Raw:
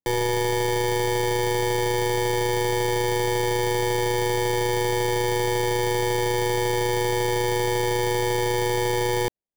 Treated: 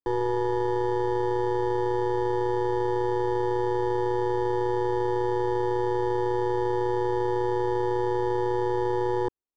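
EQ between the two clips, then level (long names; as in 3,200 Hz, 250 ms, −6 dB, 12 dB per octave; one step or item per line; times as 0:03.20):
low-pass filter 1,900 Hz 12 dB per octave
phaser with its sweep stopped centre 620 Hz, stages 6
0.0 dB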